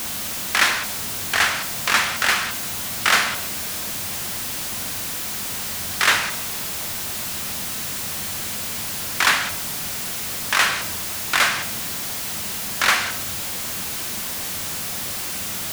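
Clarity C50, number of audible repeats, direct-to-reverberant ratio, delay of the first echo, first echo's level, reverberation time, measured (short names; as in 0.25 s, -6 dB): 13.0 dB, none, 11.0 dB, none, none, 1.1 s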